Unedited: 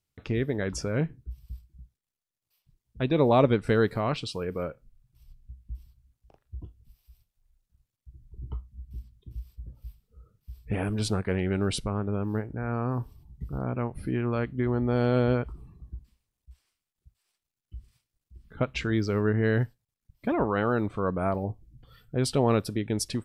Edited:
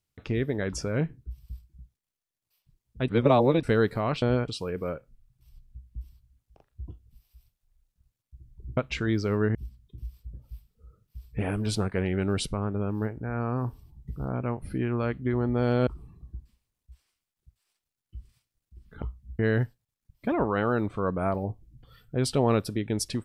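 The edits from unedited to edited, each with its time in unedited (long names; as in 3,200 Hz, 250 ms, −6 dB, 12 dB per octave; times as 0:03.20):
0:03.08–0:03.63: reverse
0:08.51–0:08.88: swap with 0:18.61–0:19.39
0:15.20–0:15.46: move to 0:04.22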